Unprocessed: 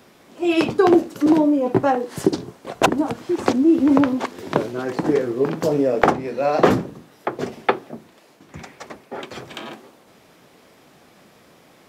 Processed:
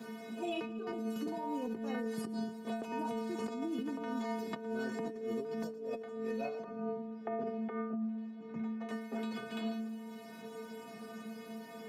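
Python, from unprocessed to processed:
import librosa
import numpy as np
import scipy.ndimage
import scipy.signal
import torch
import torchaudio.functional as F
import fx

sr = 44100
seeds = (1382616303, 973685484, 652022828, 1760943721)

y = scipy.signal.sosfilt(scipy.signal.butter(2, 150.0, 'highpass', fs=sr, output='sos'), x)
y = fx.low_shelf(y, sr, hz=340.0, db=11.5)
y = fx.stiff_resonator(y, sr, f0_hz=220.0, decay_s=0.72, stiffness=0.008)
y = fx.over_compress(y, sr, threshold_db=-41.0, ratio=-1.0)
y = fx.lowpass(y, sr, hz=1100.0, slope=12, at=(6.64, 8.89))
y = fx.echo_feedback(y, sr, ms=113, feedback_pct=55, wet_db=-20)
y = fx.band_squash(y, sr, depth_pct=70)
y = y * 10.0 ** (1.5 / 20.0)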